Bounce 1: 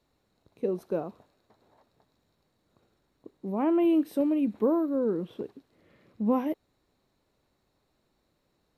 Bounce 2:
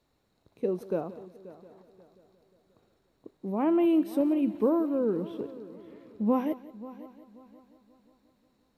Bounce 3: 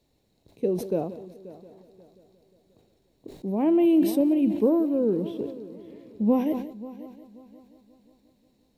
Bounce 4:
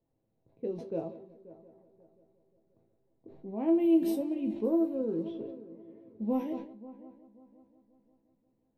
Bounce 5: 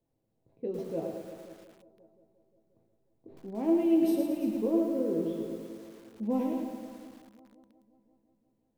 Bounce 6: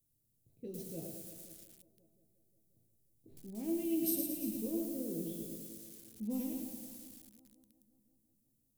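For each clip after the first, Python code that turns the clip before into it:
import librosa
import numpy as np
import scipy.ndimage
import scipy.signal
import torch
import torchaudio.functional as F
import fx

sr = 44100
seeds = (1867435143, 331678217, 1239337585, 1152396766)

y1 = fx.echo_heads(x, sr, ms=178, heads='first and third', feedback_pct=49, wet_db=-18)
y2 = fx.peak_eq(y1, sr, hz=1300.0, db=-14.5, octaves=0.91)
y2 = fx.sustainer(y2, sr, db_per_s=84.0)
y2 = y2 * 10.0 ** (4.5 / 20.0)
y3 = fx.resonator_bank(y2, sr, root=45, chord='minor', decay_s=0.2)
y3 = fx.env_lowpass(y3, sr, base_hz=1200.0, full_db=-28.0)
y3 = y3 * 10.0 ** (2.5 / 20.0)
y4 = y3 + 10.0 ** (-13.0 / 20.0) * np.pad(y3, (int(347 * sr / 1000.0), 0))[:len(y3)]
y4 = fx.echo_crushed(y4, sr, ms=110, feedback_pct=55, bits=9, wet_db=-4.5)
y5 = fx.curve_eq(y4, sr, hz=(120.0, 980.0, 11000.0), db=(0, -21, 15))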